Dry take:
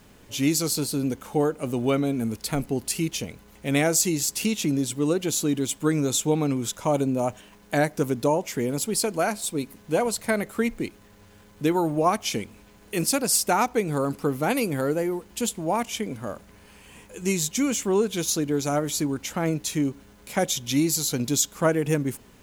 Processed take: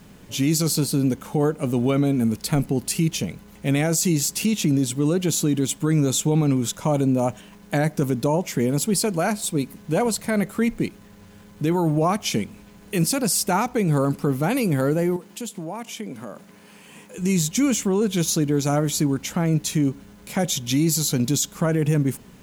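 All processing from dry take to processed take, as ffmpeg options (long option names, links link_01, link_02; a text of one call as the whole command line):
ffmpeg -i in.wav -filter_complex "[0:a]asettb=1/sr,asplit=3[link_01][link_02][link_03];[link_01]atrim=end=15.164[link_04];[link_02]atrim=start=15.16:end=17.18,asetpts=PTS-STARTPTS,afade=type=in:duration=0.004:curve=qsin,afade=type=out:start_time=2.016:duration=0.004:curve=qsin,highpass=200,acompressor=threshold=-36dB:ratio=2.5:attack=3.2:release=140:knee=1:detection=peak[link_05];[link_03]atrim=start=17.176[link_06];[link_04][link_05]acrossfade=duration=0.004:curve1=hsin:curve2=qsin[link_07];[link_07][link_06]acrossfade=duration=0.004:curve1=qsin:curve2=hsin,equalizer=frequency=170:width=1.7:gain=8.5,alimiter=limit=-15dB:level=0:latency=1:release=11,volume=2.5dB" out.wav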